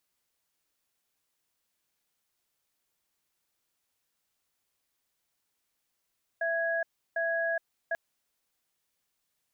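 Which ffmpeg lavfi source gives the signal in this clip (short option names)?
-f lavfi -i "aevalsrc='0.0335*(sin(2*PI*665*t)+sin(2*PI*1660*t))*clip(min(mod(t,0.75),0.42-mod(t,0.75))/0.005,0,1)':d=1.54:s=44100"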